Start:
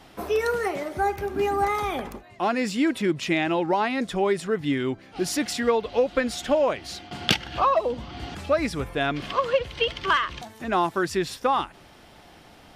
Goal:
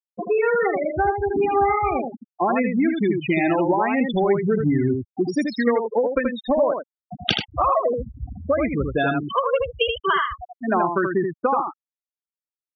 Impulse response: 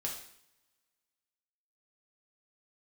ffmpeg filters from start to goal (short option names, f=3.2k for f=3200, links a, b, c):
-filter_complex "[0:a]asettb=1/sr,asplit=3[a][b][c];[a]atrim=end=4.354[d];[b]atrim=start=4.35:end=5.05,asetpts=PTS-STARTPTS,afade=t=in:d=0.004:c=qsin,afade=t=out:st=0.696:d=0.004:c=qsin,lowshelf=f=170:g=12[e];[c]atrim=start=5.046[f];[d][e]acrossfade=d=0.004:c1=hsin:c2=qsin[g];[g][f]acrossfade=d=0.004:c1=qsin:c2=hsin,afftfilt=real='re*gte(hypot(re,im),0.112)':imag='im*gte(hypot(re,im),0.112)':win_size=1024:overlap=0.75,acompressor=threshold=-25dB:ratio=6,aecho=1:1:80:0.562,volume=7.5dB"